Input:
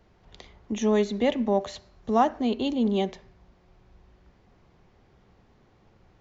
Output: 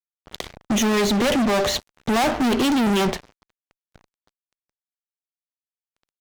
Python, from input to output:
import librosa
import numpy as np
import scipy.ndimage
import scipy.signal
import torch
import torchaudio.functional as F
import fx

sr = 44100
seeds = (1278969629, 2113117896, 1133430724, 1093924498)

y = fx.diode_clip(x, sr, knee_db=-15.5)
y = fx.fuzz(y, sr, gain_db=40.0, gate_db=-48.0)
y = y * librosa.db_to_amplitude(-4.5)